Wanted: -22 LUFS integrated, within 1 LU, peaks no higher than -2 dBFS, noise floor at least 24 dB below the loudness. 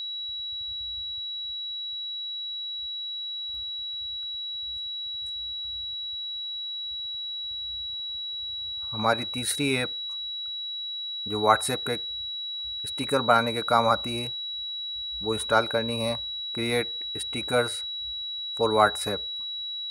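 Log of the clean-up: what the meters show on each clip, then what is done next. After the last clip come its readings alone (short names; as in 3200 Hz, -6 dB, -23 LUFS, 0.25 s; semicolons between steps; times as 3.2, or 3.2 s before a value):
steady tone 3900 Hz; tone level -31 dBFS; loudness -28.0 LUFS; peak -5.0 dBFS; loudness target -22.0 LUFS
-> notch 3900 Hz, Q 30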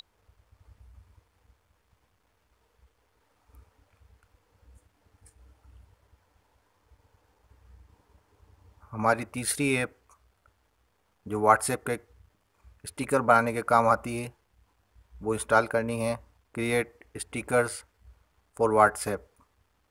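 steady tone none; loudness -27.0 LUFS; peak -4.5 dBFS; loudness target -22.0 LUFS
-> gain +5 dB; limiter -2 dBFS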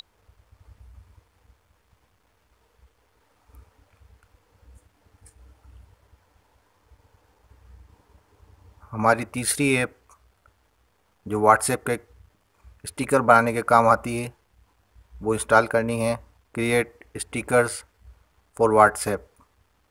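loudness -22.0 LUFS; peak -2.0 dBFS; noise floor -66 dBFS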